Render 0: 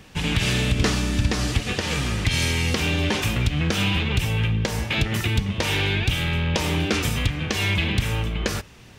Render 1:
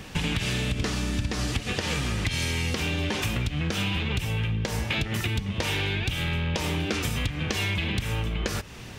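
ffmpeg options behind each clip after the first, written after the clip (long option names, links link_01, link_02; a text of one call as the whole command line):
ffmpeg -i in.wav -af "acompressor=threshold=-31dB:ratio=6,volume=6dB" out.wav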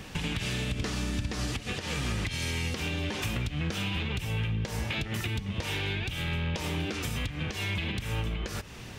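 ffmpeg -i in.wav -af "alimiter=limit=-19.5dB:level=0:latency=1:release=214,volume=-2dB" out.wav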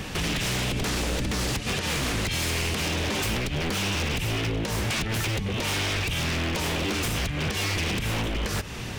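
ffmpeg -i in.wav -af "aeval=exprs='0.0282*(abs(mod(val(0)/0.0282+3,4)-2)-1)':channel_layout=same,volume=9dB" out.wav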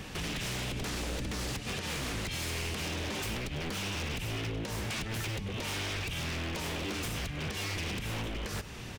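ffmpeg -i in.wav -filter_complex "[0:a]asplit=2[link_01][link_02];[link_02]adelay=99.13,volume=-16dB,highshelf=frequency=4000:gain=-2.23[link_03];[link_01][link_03]amix=inputs=2:normalize=0,volume=-8.5dB" out.wav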